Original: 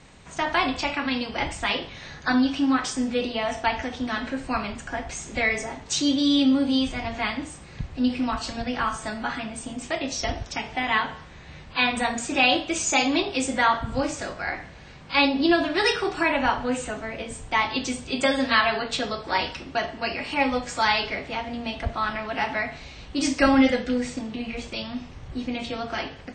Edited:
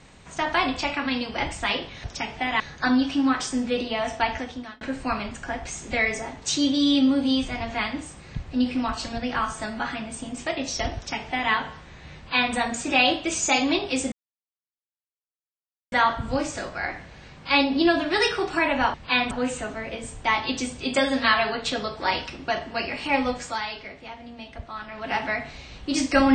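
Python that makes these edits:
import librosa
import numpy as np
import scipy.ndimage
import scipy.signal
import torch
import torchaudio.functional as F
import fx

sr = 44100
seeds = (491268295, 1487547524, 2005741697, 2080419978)

y = fx.edit(x, sr, fx.fade_out_span(start_s=3.8, length_s=0.45),
    fx.duplicate(start_s=10.4, length_s=0.56, to_s=2.04),
    fx.duplicate(start_s=11.61, length_s=0.37, to_s=16.58),
    fx.insert_silence(at_s=13.56, length_s=1.8),
    fx.fade_down_up(start_s=20.64, length_s=1.76, db=-9.5, fade_s=0.24), tone=tone)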